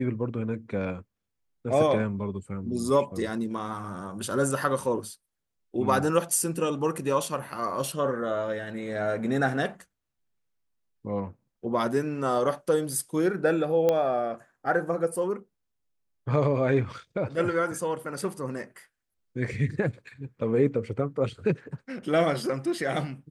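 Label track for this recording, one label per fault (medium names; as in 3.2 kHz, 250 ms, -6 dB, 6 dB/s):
13.890000	13.890000	pop -12 dBFS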